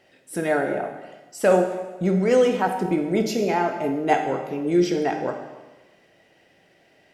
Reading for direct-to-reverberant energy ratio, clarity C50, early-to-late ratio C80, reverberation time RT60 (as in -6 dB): 4.0 dB, 7.0 dB, 8.5 dB, 1.2 s